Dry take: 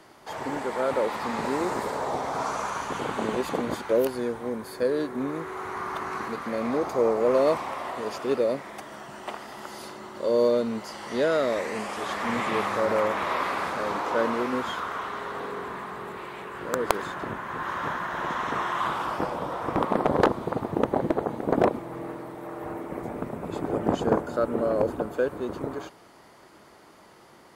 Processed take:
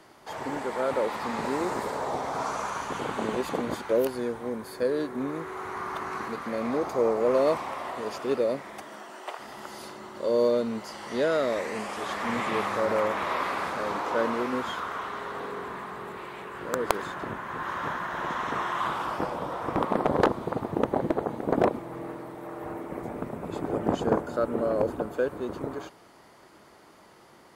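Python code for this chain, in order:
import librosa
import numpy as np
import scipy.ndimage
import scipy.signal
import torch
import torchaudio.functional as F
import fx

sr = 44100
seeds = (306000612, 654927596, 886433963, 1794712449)

y = fx.highpass(x, sr, hz=fx.line((8.82, 130.0), (9.38, 450.0)), slope=24, at=(8.82, 9.38), fade=0.02)
y = y * librosa.db_to_amplitude(-1.5)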